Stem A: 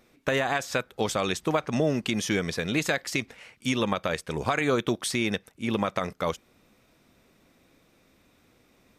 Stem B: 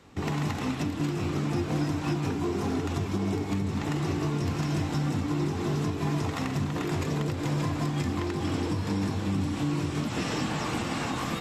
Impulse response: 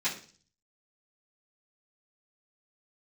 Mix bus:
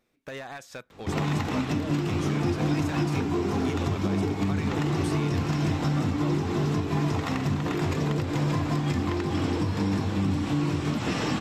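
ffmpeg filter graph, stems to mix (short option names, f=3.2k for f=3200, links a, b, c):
-filter_complex "[0:a]asoftclip=type=hard:threshold=-19.5dB,volume=-12dB[a];[1:a]equalizer=f=10k:w=0.87:g=-6,adelay=900,volume=2.5dB[b];[a][b]amix=inputs=2:normalize=0"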